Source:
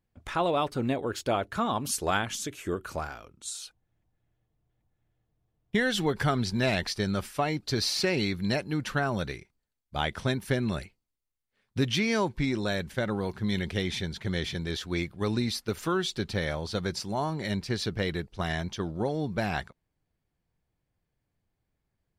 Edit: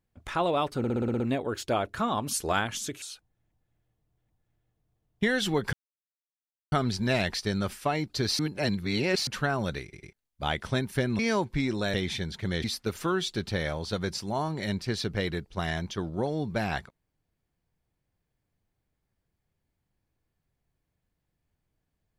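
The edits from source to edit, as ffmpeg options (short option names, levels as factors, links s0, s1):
-filter_complex "[0:a]asplit=18[s0][s1][s2][s3][s4][s5][s6][s7][s8][s9][s10][s11][s12][s13][s14][s15][s16][s17];[s0]atrim=end=0.842[s18];[s1]atrim=start=0.778:end=0.842[s19];[s2]atrim=start=0.778:end=0.842[s20];[s3]atrim=start=0.778:end=0.842[s21];[s4]atrim=start=0.778:end=0.842[s22];[s5]atrim=start=0.778:end=0.842[s23];[s6]atrim=start=0.778:end=0.842[s24];[s7]atrim=start=0.778:end=2.602[s25];[s8]atrim=start=3.538:end=6.25,asetpts=PTS-STARTPTS,afade=t=out:st=2.708:d=0.004:c=hsin,apad=pad_dur=0.99[s26];[s9]atrim=start=6.25:end=7.922,asetpts=PTS-STARTPTS,afade=t=in:d=0.004:c=hsin[s27];[s10]atrim=start=7.918:end=8.802,asetpts=PTS-STARTPTS,areverse[s28];[s11]atrim=start=8.798:end=9.462[s29];[s12]atrim=start=9.358:end=9.462[s30];[s13]atrim=start=9.358:end=9.462[s31];[s14]atrim=start=9.658:end=10.722[s32];[s15]atrim=start=12.028:end=12.782[s33];[s16]atrim=start=13.758:end=14.462[s34];[s17]atrim=start=15.458[s35];[s18][s19]acrossfade=d=0.004:c1=hsin:c2=hsin[s36];[s36][s20]acrossfade=d=0.004:c1=hsin:c2=hsin[s37];[s37][s21]acrossfade=d=0.004:c1=hsin:c2=hsin[s38];[s38][s22]acrossfade=d=0.004:c1=hsin:c2=hsin[s39];[s39][s23]acrossfade=d=0.004:c1=hsin:c2=hsin[s40];[s40][s24]acrossfade=d=0.004:c1=hsin:c2=hsin[s41];[s41][s25]acrossfade=d=0.004:c1=hsin:c2=hsin[s42];[s26][s27]concat=n=2:v=0:a=1[s43];[s42][s43]acrossfade=d=0.004:c1=hsin:c2=hsin[s44];[s44][s28]acrossfade=d=0.004:c1=hsin:c2=hsin[s45];[s45][s29]acrossfade=d=0.004:c1=hsin:c2=hsin[s46];[s46][s30]acrossfade=d=0.004:c1=hsin:c2=hsin[s47];[s47][s31]acrossfade=d=0.004:c1=hsin:c2=hsin[s48];[s48][s32]acrossfade=d=0.004:c1=hsin:c2=hsin[s49];[s49][s33]acrossfade=d=0.004:c1=hsin:c2=hsin[s50];[s50][s34]acrossfade=d=0.004:c1=hsin:c2=hsin[s51];[s51][s35]acrossfade=d=0.004:c1=hsin:c2=hsin"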